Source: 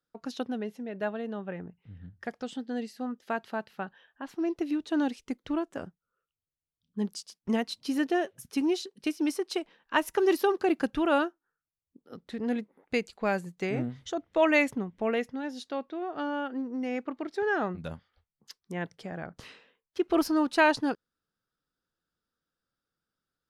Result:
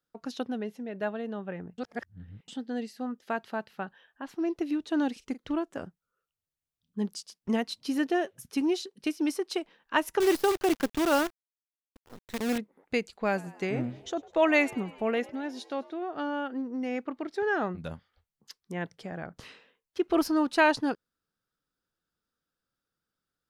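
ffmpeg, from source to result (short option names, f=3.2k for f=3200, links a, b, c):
-filter_complex "[0:a]asettb=1/sr,asplit=3[a][b][c];[a]atrim=end=5.124[d];[b]atrim=start=5.12:end=5.52,asetpts=PTS-STARTPTS,afade=t=in:d=0.004:c=qsin,afade=t=out:st=0.396:d=0.004:c=qsin,asplit=2[e][f];[f]adelay=42,volume=-14dB[g];[e][g]amix=inputs=2:normalize=0,atrim=end_sample=17640[h];[c]atrim=start=5.516[i];[d][h]acrossfade=d=0.004:c1=hsin:c2=qsin[j];[j][i]acrossfade=d=0.004:c1=qsin:c2=hsin,asettb=1/sr,asplit=3[k][l][m];[k]atrim=end=10.204[n];[l]atrim=start=10.2:end=12.58,asetpts=PTS-STARTPTS,afade=t=in:d=0.004:c=qsin,afade=t=out:st=2.376:d=0.004:c=qsin,acrusher=bits=6:dc=4:mix=0:aa=0.000001[o];[m]atrim=start=12.576[p];[n][o]acrossfade=d=0.004:c1=hsin:c2=qsin[q];[q][p]acrossfade=d=0.004:c1=qsin:c2=hsin,asettb=1/sr,asplit=3[r][s][t];[r]atrim=end=13.134[u];[s]atrim=start=13.13:end=15.93,asetpts=PTS-STARTPTS,afade=t=in:d=0.004:c=qsin,afade=t=out:st=2.796:d=0.004:c=qsin,asplit=6[v][w][x][y][z][aa];[w]adelay=102,afreqshift=77,volume=-22dB[ab];[x]adelay=204,afreqshift=154,volume=-26dB[ac];[y]adelay=306,afreqshift=231,volume=-30dB[ad];[z]adelay=408,afreqshift=308,volume=-34dB[ae];[aa]adelay=510,afreqshift=385,volume=-38.1dB[af];[v][ab][ac][ad][ae][af]amix=inputs=6:normalize=0,atrim=end_sample=123480[ag];[t]atrim=start=15.926[ah];[u][ag]acrossfade=d=0.004:c1=hsin:c2=qsin[ai];[ai][ah]acrossfade=d=0.004:c1=qsin:c2=hsin,asplit=3[aj][ak][al];[aj]atrim=end=1.782[am];[ak]atrim=start=1.778:end=2.482,asetpts=PTS-STARTPTS,areverse[an];[al]atrim=start=2.478[ao];[am][an]acrossfade=d=0.004:c1=hsin:c2=hsin[ap];[ap][ao]acrossfade=d=0.004:c1=hsin:c2=hsin"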